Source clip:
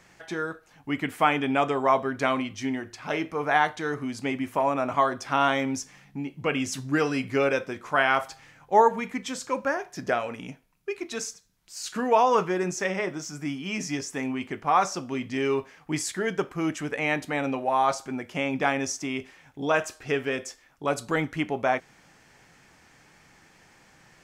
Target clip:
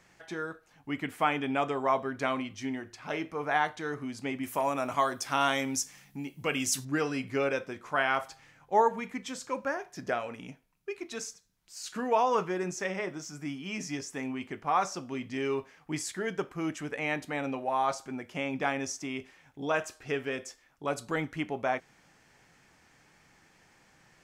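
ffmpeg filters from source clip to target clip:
-filter_complex "[0:a]asettb=1/sr,asplit=3[a][b][c];[a]atrim=end=4.434[d];[b]atrim=start=4.43:end=6.85,asetpts=PTS-STARTPTS,afade=t=in:d=0.004:c=qsin,afade=t=out:st=2.416:d=0.004:c=qsin,aemphasis=mode=production:type=75kf[e];[c]atrim=start=6.846[f];[d][e]acrossfade=d=0.004:c1=hsin:c2=qsin[g];[g][f]acrossfade=d=0.004:c1=qsin:c2=hsin,volume=-5.5dB"

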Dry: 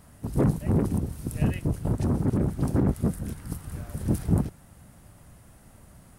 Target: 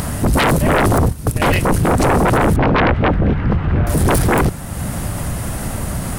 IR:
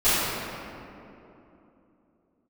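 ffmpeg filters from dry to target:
-filter_complex "[0:a]asettb=1/sr,asplit=3[a][b][c];[a]atrim=end=0.714[d];[b]atrim=start=0.71:end=1.56,asetpts=PTS-STARTPTS,afade=t=in:d=0.004:c=qsin,afade=t=out:st=0.846:d=0.004:c=qsin,agate=range=-15dB:threshold=-29dB:ratio=16:detection=peak[e];[c]atrim=start=1.556[f];[d][e]acrossfade=d=0.004:c1=hsin:c2=qsin[g];[g][f]acrossfade=d=0.004:c1=qsin:c2=hsin,asettb=1/sr,asplit=3[h][i][j];[h]atrim=end=2.564[k];[i]atrim=start=2.56:end=3.87,asetpts=PTS-STARTPTS,afade=t=in:d=0.004:c=qsin,afade=t=out:st=1.306:d=0.004:c=qsin,lowpass=f=2.8k:w=0.5412,lowpass=f=2.8k:w=1.3066[l];[j]atrim=start=3.866[m];[k][l]acrossfade=d=0.004:c1=hsin:c2=qsin[n];[n][m]acrossfade=d=0.004:c1=qsin:c2=hsin,asplit=2[o][p];[p]acompressor=mode=upward:threshold=-30dB:ratio=2.5,volume=-2dB[q];[o][q]amix=inputs=2:normalize=0,aeval=exprs='0.473*sin(PI/2*7.94*val(0)/0.473)':c=same,volume=-3.5dB"

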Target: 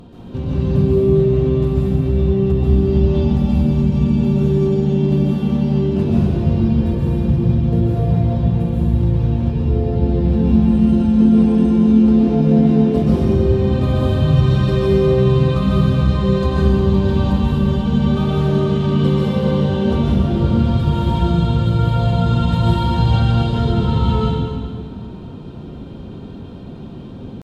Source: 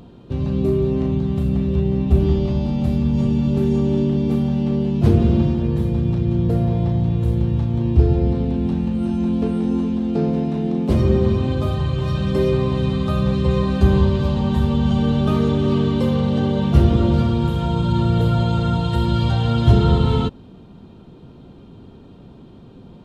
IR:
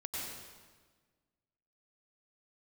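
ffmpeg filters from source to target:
-filter_complex "[0:a]acompressor=threshold=-21dB:ratio=20,atempo=0.84[a];[1:a]atrim=start_sample=2205,asetrate=30870,aresample=44100[b];[a][b]afir=irnorm=-1:irlink=0,volume=5dB"

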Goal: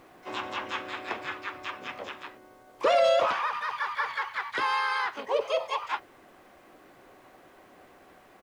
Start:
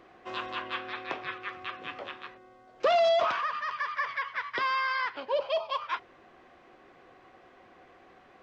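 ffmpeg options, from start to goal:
-filter_complex "[0:a]asplit=4[a][b][c][d];[b]asetrate=35002,aresample=44100,atempo=1.25992,volume=-6dB[e];[c]asetrate=37084,aresample=44100,atempo=1.18921,volume=-9dB[f];[d]asetrate=88200,aresample=44100,atempo=0.5,volume=-15dB[g];[a][e][f][g]amix=inputs=4:normalize=0,acrusher=bits=10:mix=0:aa=0.000001"

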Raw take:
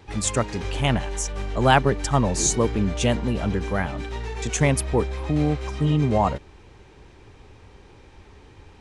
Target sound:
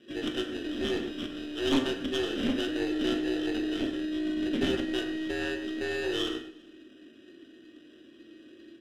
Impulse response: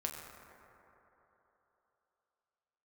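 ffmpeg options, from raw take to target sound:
-filter_complex "[0:a]highpass=f=62:w=0.5412,highpass=f=62:w=1.3066,equalizer=f=2k:t=o:w=0.77:g=4,bandreject=f=780:w=12,asplit=2[a][b];[b]acompressor=threshold=-29dB:ratio=6,volume=-1dB[c];[a][c]amix=inputs=2:normalize=0,afreqshift=250,acrusher=samples=20:mix=1:aa=0.000001,asplit=3[d][e][f];[d]bandpass=f=270:t=q:w=8,volume=0dB[g];[e]bandpass=f=2.29k:t=q:w=8,volume=-6dB[h];[f]bandpass=f=3.01k:t=q:w=8,volume=-9dB[i];[g][h][i]amix=inputs=3:normalize=0,aeval=exprs='0.168*(cos(1*acos(clip(val(0)/0.168,-1,1)))-cos(1*PI/2))+0.0335*(cos(5*acos(clip(val(0)/0.168,-1,1)))-cos(5*PI/2))+0.0299*(cos(6*acos(clip(val(0)/0.168,-1,1)))-cos(6*PI/2))':c=same,aecho=1:1:198|396|594:0.0708|0.0276|0.0108[j];[1:a]atrim=start_sample=2205,atrim=end_sample=6174[k];[j][k]afir=irnorm=-1:irlink=0"

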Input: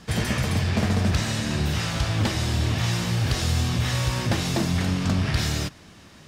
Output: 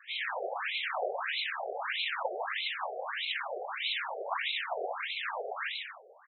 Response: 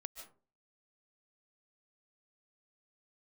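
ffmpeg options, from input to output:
-filter_complex "[0:a]acrossover=split=570|2200[a][b][c];[a]volume=22.5dB,asoftclip=hard,volume=-22.5dB[d];[d][b][c]amix=inputs=3:normalize=0,aecho=1:1:150|247.5|310.9|352.1|378.8:0.631|0.398|0.251|0.158|0.1,afftfilt=real='hypot(re,im)*cos(2*PI*random(0))':imag='hypot(re,im)*sin(2*PI*random(1))':win_size=512:overlap=0.75,afftfilt=real='re*between(b*sr/1024,540*pow(3000/540,0.5+0.5*sin(2*PI*1.6*pts/sr))/1.41,540*pow(3000/540,0.5+0.5*sin(2*PI*1.6*pts/sr))*1.41)':imag='im*between(b*sr/1024,540*pow(3000/540,0.5+0.5*sin(2*PI*1.6*pts/sr))/1.41,540*pow(3000/540,0.5+0.5*sin(2*PI*1.6*pts/sr))*1.41)':win_size=1024:overlap=0.75,volume=7dB"

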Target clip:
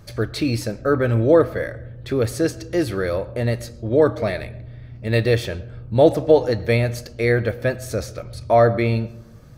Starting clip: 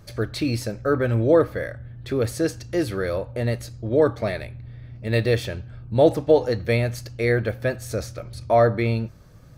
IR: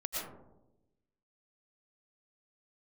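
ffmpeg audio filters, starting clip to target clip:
-filter_complex "[0:a]asplit=2[a][b];[1:a]atrim=start_sample=2205,lowpass=7k[c];[b][c]afir=irnorm=-1:irlink=0,volume=-21dB[d];[a][d]amix=inputs=2:normalize=0,volume=2dB"

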